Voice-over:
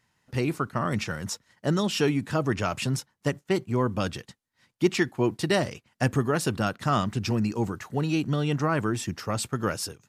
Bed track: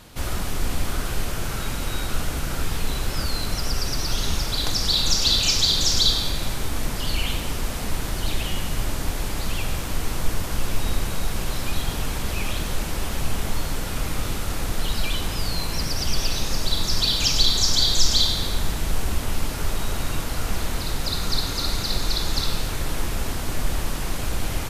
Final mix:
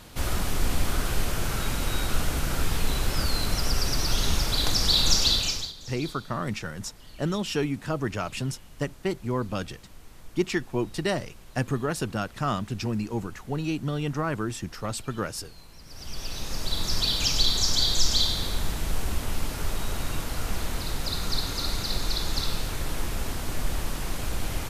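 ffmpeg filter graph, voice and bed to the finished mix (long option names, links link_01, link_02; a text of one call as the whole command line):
ffmpeg -i stem1.wav -i stem2.wav -filter_complex "[0:a]adelay=5550,volume=-3dB[link_01];[1:a]volume=18.5dB,afade=type=out:start_time=5.15:duration=0.58:silence=0.0749894,afade=type=in:start_time=15.84:duration=1.07:silence=0.112202[link_02];[link_01][link_02]amix=inputs=2:normalize=0" out.wav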